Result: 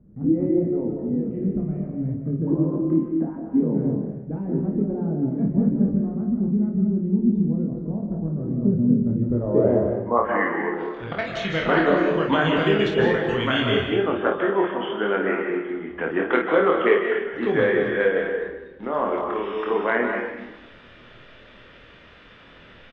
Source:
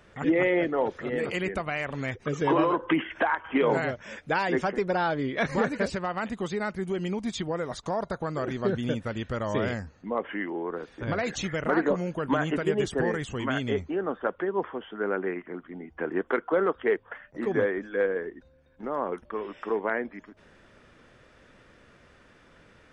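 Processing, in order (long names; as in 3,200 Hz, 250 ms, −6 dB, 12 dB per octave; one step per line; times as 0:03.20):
low-pass filter sweep 220 Hz → 3,300 Hz, 0:09.03–0:10.88
0:10.69–0:11.45: output level in coarse steps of 13 dB
0:12.78–0:13.29: noise gate −27 dBFS, range −19 dB
ambience of single reflections 25 ms −4 dB, 53 ms −6.5 dB
on a send at −3 dB: convolution reverb RT60 1.0 s, pre-delay 115 ms
on the sum: level +3 dB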